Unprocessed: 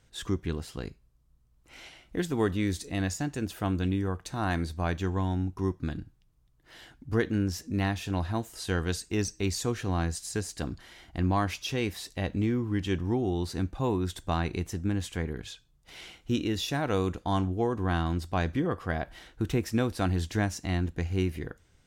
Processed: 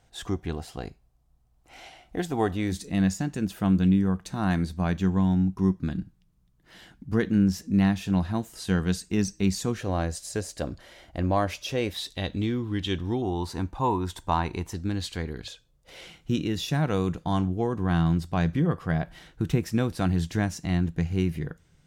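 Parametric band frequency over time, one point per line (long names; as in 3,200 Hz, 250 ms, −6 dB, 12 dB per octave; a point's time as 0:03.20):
parametric band +13 dB 0.42 octaves
740 Hz
from 0:02.72 190 Hz
from 0:09.81 570 Hz
from 0:11.91 3,600 Hz
from 0:13.22 940 Hz
from 0:14.74 4,300 Hz
from 0:15.48 530 Hz
from 0:16.07 160 Hz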